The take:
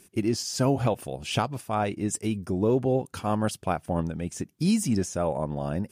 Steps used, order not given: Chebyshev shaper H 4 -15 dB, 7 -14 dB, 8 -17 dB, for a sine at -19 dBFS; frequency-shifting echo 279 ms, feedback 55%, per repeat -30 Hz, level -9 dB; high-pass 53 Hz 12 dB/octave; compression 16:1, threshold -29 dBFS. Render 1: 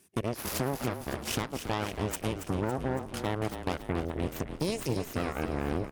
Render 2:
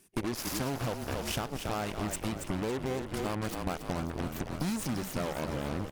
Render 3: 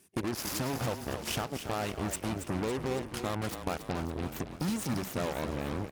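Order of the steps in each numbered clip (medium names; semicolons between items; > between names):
compression > Chebyshev shaper > high-pass > frequency-shifting echo; high-pass > Chebyshev shaper > frequency-shifting echo > compression; Chebyshev shaper > compression > frequency-shifting echo > high-pass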